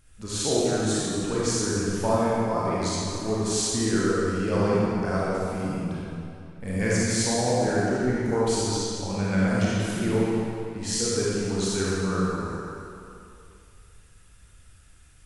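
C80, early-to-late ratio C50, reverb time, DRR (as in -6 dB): -2.5 dB, -5.0 dB, 2.6 s, -8.0 dB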